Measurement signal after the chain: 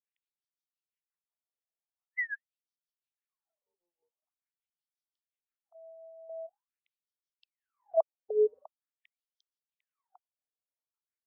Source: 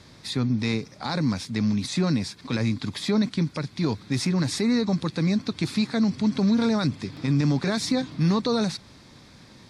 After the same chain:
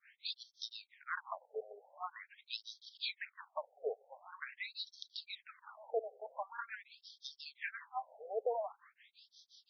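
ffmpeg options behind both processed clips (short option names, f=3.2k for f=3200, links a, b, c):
-filter_complex "[0:a]equalizer=f=160:t=o:w=0.67:g=5,equalizer=f=630:t=o:w=0.67:g=4,equalizer=f=4k:t=o:w=0.67:g=-3,acrossover=split=620[a][b];[a]aeval=exprs='val(0)*(1-1/2+1/2*cos(2*PI*5.7*n/s))':c=same[c];[b]aeval=exprs='val(0)*(1-1/2-1/2*cos(2*PI*5.7*n/s))':c=same[d];[c][d]amix=inputs=2:normalize=0,afftfilt=real='re*between(b*sr/1024,560*pow(4500/560,0.5+0.5*sin(2*PI*0.45*pts/sr))/1.41,560*pow(4500/560,0.5+0.5*sin(2*PI*0.45*pts/sr))*1.41)':imag='im*between(b*sr/1024,560*pow(4500/560,0.5+0.5*sin(2*PI*0.45*pts/sr))/1.41,560*pow(4500/560,0.5+0.5*sin(2*PI*0.45*pts/sr))*1.41)':win_size=1024:overlap=0.75"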